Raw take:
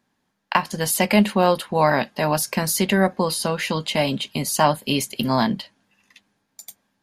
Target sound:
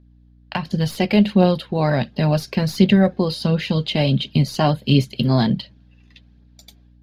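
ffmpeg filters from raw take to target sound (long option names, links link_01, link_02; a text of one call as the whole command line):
ffmpeg -i in.wav -filter_complex "[0:a]equalizer=frequency=125:width_type=o:width=1:gain=9,equalizer=frequency=1000:width_type=o:width=1:gain=-10,equalizer=frequency=2000:width_type=o:width=1:gain=-5,equalizer=frequency=4000:width_type=o:width=1:gain=6,equalizer=frequency=8000:width_type=o:width=1:gain=-9,acrossover=split=6800[link_01][link_02];[link_01]dynaudnorm=framelen=400:gausssize=3:maxgain=9dB[link_03];[link_02]aeval=exprs='clip(val(0),-1,0.0237)':channel_layout=same[link_04];[link_03][link_04]amix=inputs=2:normalize=0,highshelf=frequency=5100:gain=-11.5,aphaser=in_gain=1:out_gain=1:delay=3:decay=0.36:speed=1.4:type=triangular,aeval=exprs='val(0)+0.00447*(sin(2*PI*60*n/s)+sin(2*PI*2*60*n/s)/2+sin(2*PI*3*60*n/s)/3+sin(2*PI*4*60*n/s)/4+sin(2*PI*5*60*n/s)/5)':channel_layout=same,volume=-2.5dB" out.wav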